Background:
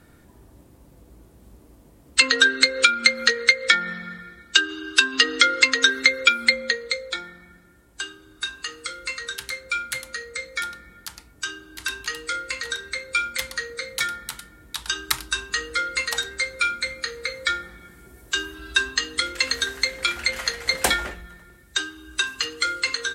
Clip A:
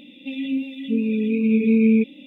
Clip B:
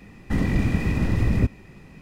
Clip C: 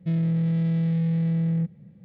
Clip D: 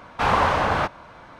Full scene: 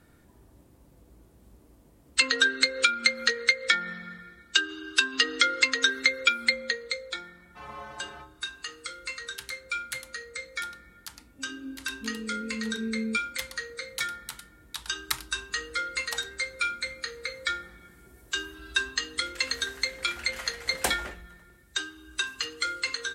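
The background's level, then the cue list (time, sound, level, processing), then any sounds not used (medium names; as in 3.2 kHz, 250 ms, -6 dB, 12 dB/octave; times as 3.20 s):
background -6 dB
7.36 s: add D -10.5 dB + inharmonic resonator 64 Hz, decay 0.83 s, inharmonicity 0.03
11.13 s: add A -15.5 dB + low-pass 1.2 kHz
not used: B, C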